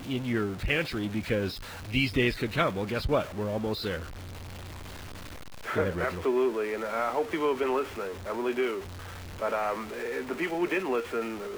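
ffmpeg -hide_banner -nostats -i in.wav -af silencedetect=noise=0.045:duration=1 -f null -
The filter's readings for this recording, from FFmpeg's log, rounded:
silence_start: 3.96
silence_end: 5.69 | silence_duration: 1.73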